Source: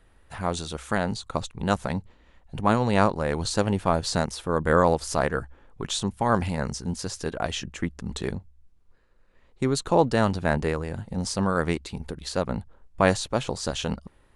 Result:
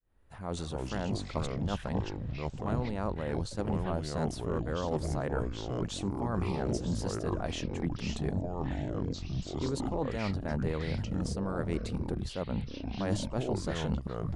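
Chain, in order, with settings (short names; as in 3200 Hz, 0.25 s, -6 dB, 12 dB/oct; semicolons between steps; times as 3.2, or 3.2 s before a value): opening faded in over 0.85 s; reverse; compressor 5:1, threshold -34 dBFS, peak gain reduction 18 dB; reverse; echoes that change speed 0.143 s, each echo -5 st, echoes 3; tilt shelf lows +4 dB, about 900 Hz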